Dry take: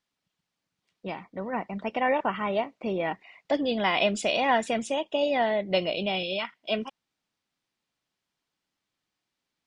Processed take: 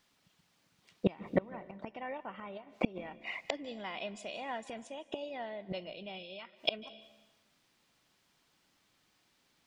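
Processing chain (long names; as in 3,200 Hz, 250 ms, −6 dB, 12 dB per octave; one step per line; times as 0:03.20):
0:02.57–0:02.98: downward compressor 12 to 1, threshold −30 dBFS, peak gain reduction 9.5 dB
gate with flip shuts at −26 dBFS, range −28 dB
convolution reverb RT60 1.1 s, pre-delay 145 ms, DRR 17.5 dB
level +11.5 dB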